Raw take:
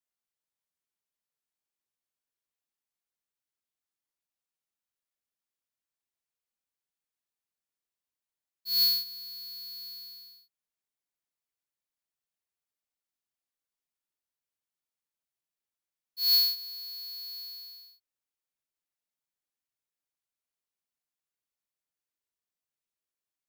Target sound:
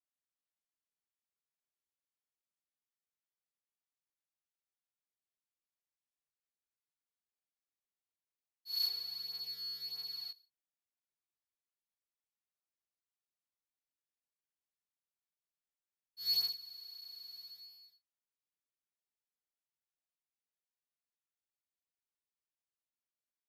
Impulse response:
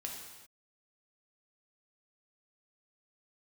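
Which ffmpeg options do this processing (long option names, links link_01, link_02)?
-filter_complex "[0:a]highshelf=frequency=11000:gain=-8.5,asettb=1/sr,asplit=3[link_01][link_02][link_03];[link_01]atrim=end=8.874[link_04];[link_02]atrim=start=8.87:end=10.31,asetpts=PTS-STARTPTS,afade=type=in:duration=0.004:curve=qsin,afade=type=out:start_time=1.436:duration=0.004:curve=qsin,asplit=2[link_05][link_06];[link_06]highpass=frequency=720:poles=1,volume=35dB,asoftclip=type=tanh:threshold=-23dB[link_07];[link_05][link_07]amix=inputs=2:normalize=0,lowpass=frequency=2600:poles=1,volume=-6dB[link_08];[link_03]atrim=start=10.306[link_09];[link_04][link_08]acrossfade=duration=0.004:curve1=hsin:curve2=qsin[link_10];[link_10][link_09]acrossfade=duration=0.004:curve1=qsin:curve2=hsin,flanger=delay=16:depth=6.9:speed=0.31,aresample=32000,aresample=44100,volume=-5.5dB"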